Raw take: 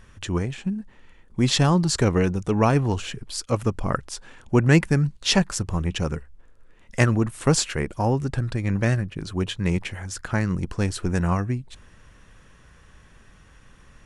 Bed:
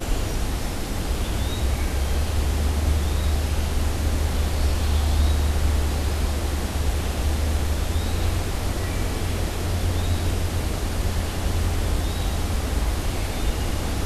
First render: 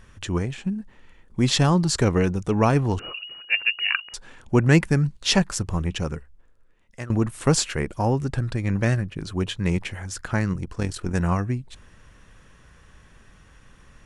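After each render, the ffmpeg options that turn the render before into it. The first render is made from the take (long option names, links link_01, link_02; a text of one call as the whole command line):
ffmpeg -i in.wav -filter_complex "[0:a]asettb=1/sr,asplit=3[link_01][link_02][link_03];[link_01]atrim=end=2.994[link_04];[link_02]atrim=start=2.99:end=4.14,asetpts=PTS-STARTPTS,afade=type=in:duration=0.004:curve=qsin,afade=type=out:start_time=1.146:duration=0.004:curve=qsin,lowpass=frequency=2500:width_type=q:width=0.5098,lowpass=frequency=2500:width_type=q:width=0.6013,lowpass=frequency=2500:width_type=q:width=0.9,lowpass=frequency=2500:width_type=q:width=2.563,afreqshift=-2900[link_05];[link_03]atrim=start=4.136[link_06];[link_04][link_05]acrossfade=duration=0.004:curve1=hsin:curve2=qsin[link_07];[link_07][link_06]acrossfade=duration=0.004:curve1=qsin:curve2=hsin,asettb=1/sr,asplit=3[link_08][link_09][link_10];[link_08]atrim=end=10.534[link_11];[link_09]atrim=start=10.53:end=11.15,asetpts=PTS-STARTPTS,afade=type=in:duration=0.004:curve=qsin,afade=type=out:start_time=0.616:duration=0.004:curve=qsin,tremolo=f=41:d=0.621[link_12];[link_10]atrim=start=11.146[link_13];[link_11][link_12]acrossfade=duration=0.004:curve1=hsin:curve2=qsin[link_14];[link_14][link_13]acrossfade=duration=0.004:curve1=qsin:curve2=hsin,asplit=2[link_15][link_16];[link_15]atrim=end=7.1,asetpts=PTS-STARTPTS,afade=type=out:start_time=5.77:duration=1.33:silence=0.112202[link_17];[link_16]atrim=start=7.1,asetpts=PTS-STARTPTS,afade=type=in:duration=0.004:curve=hsin:silence=0.112202[link_18];[link_17][link_18]concat=n=2:v=0:a=1" out.wav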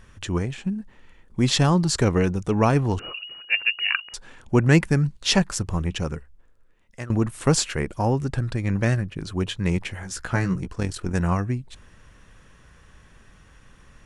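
ffmpeg -i in.wav -filter_complex "[0:a]asettb=1/sr,asplit=3[link_01][link_02][link_03];[link_01]atrim=end=10.014[link_04];[link_02]atrim=start=10.01:end=10.68,asetpts=PTS-STARTPTS,afade=type=in:duration=0.004:curve=qsin,afade=type=out:start_time=0.666:duration=0.004:curve=qsin,asplit=2[link_05][link_06];[link_06]adelay=16,volume=-5dB[link_07];[link_05][link_07]amix=inputs=2:normalize=0,atrim=end_sample=29547[link_08];[link_03]atrim=start=10.676[link_09];[link_04][link_08]acrossfade=duration=0.004:curve1=hsin:curve2=qsin[link_10];[link_10][link_09]acrossfade=duration=0.004:curve1=qsin:curve2=hsin" out.wav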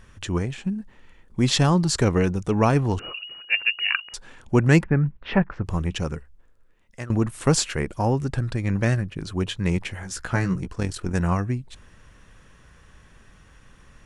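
ffmpeg -i in.wav -filter_complex "[0:a]asplit=3[link_01][link_02][link_03];[link_01]afade=type=out:start_time=4.82:duration=0.02[link_04];[link_02]lowpass=frequency=2200:width=0.5412,lowpass=frequency=2200:width=1.3066,afade=type=in:start_time=4.82:duration=0.02,afade=type=out:start_time=5.64:duration=0.02[link_05];[link_03]afade=type=in:start_time=5.64:duration=0.02[link_06];[link_04][link_05][link_06]amix=inputs=3:normalize=0" out.wav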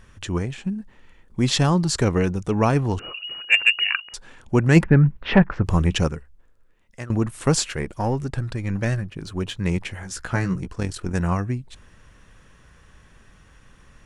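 ffmpeg -i in.wav -filter_complex "[0:a]asettb=1/sr,asplit=3[link_01][link_02][link_03];[link_01]atrim=end=3.244[link_04];[link_02]atrim=start=3.24:end=3.84,asetpts=PTS-STARTPTS,afade=type=in:duration=0.004:curve=qsin,afade=type=out:start_time=0.596:duration=0.004:curve=qsin,acontrast=60[link_05];[link_03]atrim=start=3.836[link_06];[link_04][link_05]acrossfade=duration=0.004:curve1=hsin:curve2=qsin[link_07];[link_07][link_06]acrossfade=duration=0.004:curve1=qsin:curve2=hsin,asplit=3[link_08][link_09][link_10];[link_08]afade=type=out:start_time=4.75:duration=0.02[link_11];[link_09]acontrast=66,afade=type=in:start_time=4.75:duration=0.02,afade=type=out:start_time=6.07:duration=0.02[link_12];[link_10]afade=type=in:start_time=6.07:duration=0.02[link_13];[link_11][link_12][link_13]amix=inputs=3:normalize=0,asettb=1/sr,asplit=3[link_14][link_15][link_16];[link_14]atrim=end=7.724[link_17];[link_15]atrim=start=7.72:end=9.56,asetpts=PTS-STARTPTS,afade=type=in:duration=0.004:curve=qsin,afade=type=out:start_time=1.836:duration=0.004:curve=qsin,aeval=exprs='if(lt(val(0),0),0.708*val(0),val(0))':channel_layout=same[link_18];[link_16]atrim=start=9.556[link_19];[link_17][link_18]acrossfade=duration=0.004:curve1=hsin:curve2=qsin[link_20];[link_20][link_19]acrossfade=duration=0.004:curve1=qsin:curve2=hsin" out.wav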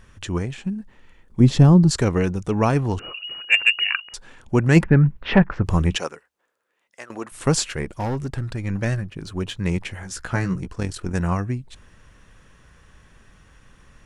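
ffmpeg -i in.wav -filter_complex "[0:a]asettb=1/sr,asplit=3[link_01][link_02][link_03];[link_01]atrim=end=1.404[link_04];[link_02]atrim=start=1.4:end=1.91,asetpts=PTS-STARTPTS,afade=type=in:duration=0.004:curve=qsin,afade=type=out:start_time=0.506:duration=0.004:curve=qsin,tiltshelf=frequency=650:gain=9[link_05];[link_03]atrim=start=1.906[link_06];[link_04][link_05]acrossfade=duration=0.004:curve1=hsin:curve2=qsin[link_07];[link_07][link_06]acrossfade=duration=0.004:curve1=qsin:curve2=hsin,asettb=1/sr,asplit=3[link_08][link_09][link_10];[link_08]atrim=end=5.974[link_11];[link_09]atrim=start=5.97:end=7.32,asetpts=PTS-STARTPTS,afade=type=in:duration=0.004:curve=qsin,afade=type=out:start_time=1.346:duration=0.004:curve=qsin,highpass=500[link_12];[link_10]atrim=start=7.316[link_13];[link_11][link_12]acrossfade=duration=0.004:curve1=hsin:curve2=qsin[link_14];[link_14][link_13]acrossfade=duration=0.004:curve1=qsin:curve2=hsin,asettb=1/sr,asplit=3[link_15][link_16][link_17];[link_15]atrim=end=7.994[link_18];[link_16]atrim=start=7.99:end=8.58,asetpts=PTS-STARTPTS,afade=type=in:duration=0.004:curve=qsin,afade=type=out:start_time=0.586:duration=0.004:curve=qsin,asoftclip=type=hard:threshold=-20.5dB[link_19];[link_17]atrim=start=8.576[link_20];[link_18][link_19]acrossfade=duration=0.004:curve1=hsin:curve2=qsin[link_21];[link_21][link_20]acrossfade=duration=0.004:curve1=qsin:curve2=hsin" out.wav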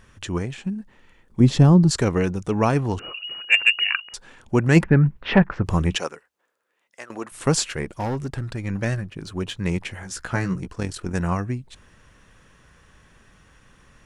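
ffmpeg -i in.wav -af "lowshelf=frequency=80:gain=-6" out.wav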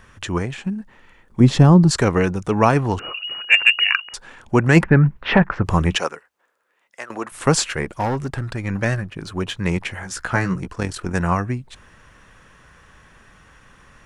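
ffmpeg -i in.wav -filter_complex "[0:a]acrossover=split=670|2200[link_01][link_02][link_03];[link_02]acontrast=32[link_04];[link_01][link_04][link_03]amix=inputs=3:normalize=0,alimiter=level_in=2.5dB:limit=-1dB:release=50:level=0:latency=1" out.wav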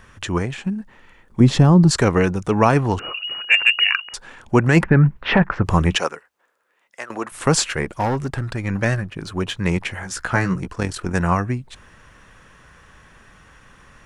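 ffmpeg -i in.wav -af "volume=1dB,alimiter=limit=-3dB:level=0:latency=1" out.wav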